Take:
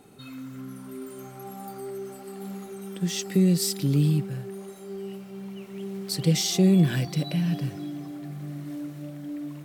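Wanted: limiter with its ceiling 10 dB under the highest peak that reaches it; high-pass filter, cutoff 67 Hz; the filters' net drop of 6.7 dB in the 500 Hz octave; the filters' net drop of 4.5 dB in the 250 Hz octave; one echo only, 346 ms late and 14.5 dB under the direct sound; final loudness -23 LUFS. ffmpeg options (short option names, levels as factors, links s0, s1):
-af "highpass=67,equalizer=f=250:t=o:g=-6.5,equalizer=f=500:t=o:g=-6.5,alimiter=limit=0.0631:level=0:latency=1,aecho=1:1:346:0.188,volume=4.22"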